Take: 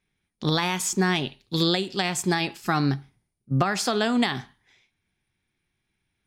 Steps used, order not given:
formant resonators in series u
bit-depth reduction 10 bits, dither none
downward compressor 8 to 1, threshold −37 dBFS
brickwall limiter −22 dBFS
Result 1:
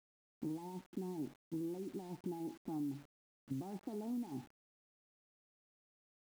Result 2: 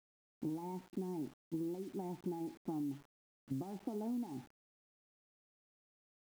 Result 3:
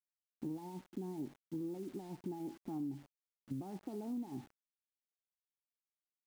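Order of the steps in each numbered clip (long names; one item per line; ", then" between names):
brickwall limiter, then formant resonators in series, then downward compressor, then bit-depth reduction
formant resonators in series, then brickwall limiter, then downward compressor, then bit-depth reduction
brickwall limiter, then formant resonators in series, then bit-depth reduction, then downward compressor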